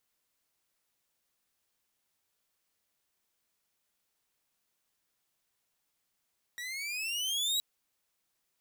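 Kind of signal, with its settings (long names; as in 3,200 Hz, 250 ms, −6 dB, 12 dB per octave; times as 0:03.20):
pitch glide with a swell saw, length 1.02 s, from 1,900 Hz, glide +12.5 semitones, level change +11 dB, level −24 dB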